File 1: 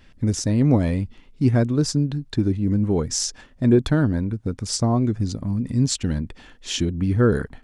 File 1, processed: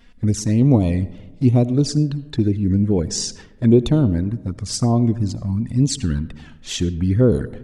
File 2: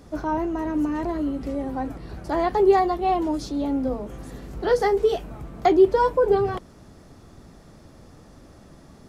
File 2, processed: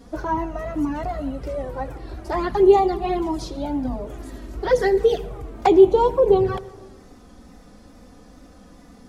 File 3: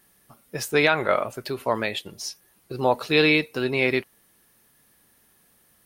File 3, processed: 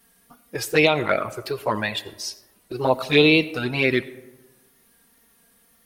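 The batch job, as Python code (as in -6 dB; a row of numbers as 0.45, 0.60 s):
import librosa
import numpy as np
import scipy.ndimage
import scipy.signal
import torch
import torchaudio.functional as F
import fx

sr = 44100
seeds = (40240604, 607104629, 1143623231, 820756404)

y = fx.wow_flutter(x, sr, seeds[0], rate_hz=2.1, depth_cents=75.0)
y = fx.env_flanger(y, sr, rest_ms=4.4, full_db=-15.0)
y = fx.rev_freeverb(y, sr, rt60_s=1.2, hf_ratio=0.4, predelay_ms=40, drr_db=17.0)
y = librosa.util.normalize(y) * 10.0 ** (-3 / 20.0)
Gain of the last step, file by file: +3.5, +4.5, +4.5 dB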